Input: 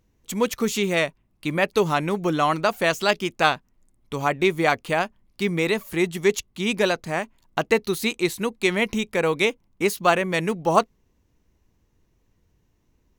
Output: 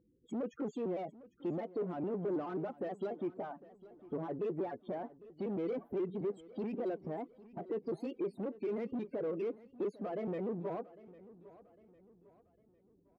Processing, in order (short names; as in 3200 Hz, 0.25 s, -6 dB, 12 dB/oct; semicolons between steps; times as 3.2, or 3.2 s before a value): trilling pitch shifter +2.5 st, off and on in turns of 0.107 s; compressor 4:1, threshold -30 dBFS, peak gain reduction 15.5 dB; sample leveller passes 1; limiter -24.5 dBFS, peak gain reduction 11 dB; loudest bins only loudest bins 16; hard clip -36 dBFS, distortion -8 dB; band-pass 360 Hz, Q 1.3; feedback echo 0.803 s, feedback 42%, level -19 dB; gain +5 dB